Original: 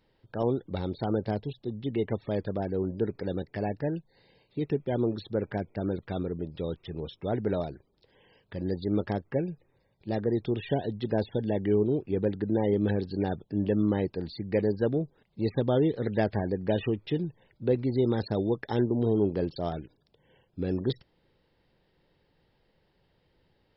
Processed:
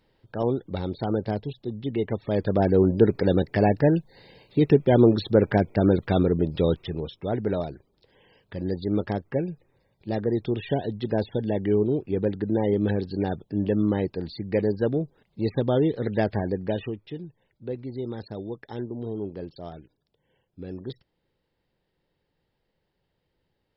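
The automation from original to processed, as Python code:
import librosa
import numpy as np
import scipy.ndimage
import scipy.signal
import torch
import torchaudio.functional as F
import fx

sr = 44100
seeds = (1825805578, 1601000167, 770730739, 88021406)

y = fx.gain(x, sr, db=fx.line((2.2, 2.5), (2.65, 11.0), (6.71, 11.0), (7.12, 2.5), (16.56, 2.5), (17.09, -7.0)))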